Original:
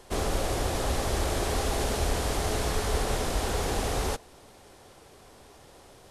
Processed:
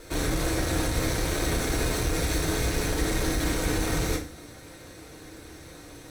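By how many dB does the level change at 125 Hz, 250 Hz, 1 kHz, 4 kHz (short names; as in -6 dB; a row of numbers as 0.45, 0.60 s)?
+2.5, +6.0, -3.0, +1.5 dB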